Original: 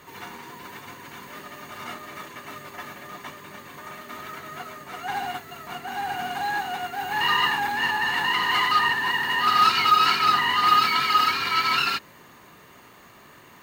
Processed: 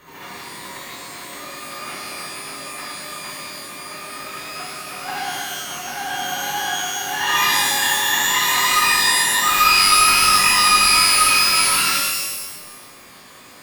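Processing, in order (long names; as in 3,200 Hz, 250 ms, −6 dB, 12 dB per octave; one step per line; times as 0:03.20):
gain on one half-wave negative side −3 dB
tube saturation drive 15 dB, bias 0.45
reverb with rising layers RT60 1.1 s, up +12 semitones, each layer −2 dB, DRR −3.5 dB
level +1.5 dB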